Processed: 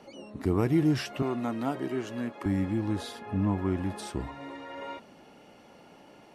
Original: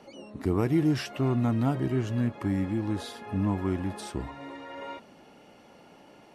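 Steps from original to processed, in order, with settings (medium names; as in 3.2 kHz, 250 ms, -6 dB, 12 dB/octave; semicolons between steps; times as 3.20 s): 1.22–2.46 s: high-pass 290 Hz 12 dB/octave; 3.19–3.77 s: treble shelf 4.4 kHz -7.5 dB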